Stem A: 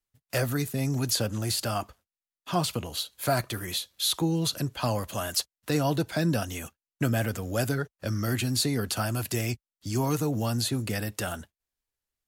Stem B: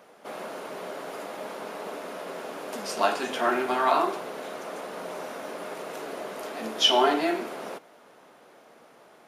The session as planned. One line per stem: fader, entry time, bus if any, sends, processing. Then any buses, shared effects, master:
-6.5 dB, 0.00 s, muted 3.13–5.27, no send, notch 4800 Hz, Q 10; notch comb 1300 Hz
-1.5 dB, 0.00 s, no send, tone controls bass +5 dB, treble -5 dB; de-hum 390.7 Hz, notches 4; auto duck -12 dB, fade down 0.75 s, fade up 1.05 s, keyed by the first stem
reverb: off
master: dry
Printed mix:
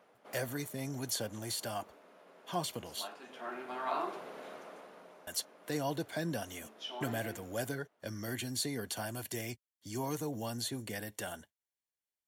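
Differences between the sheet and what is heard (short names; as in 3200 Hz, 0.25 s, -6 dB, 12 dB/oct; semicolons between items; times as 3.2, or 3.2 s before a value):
stem B -1.5 dB -> -9.5 dB; master: extra low shelf 290 Hz -5.5 dB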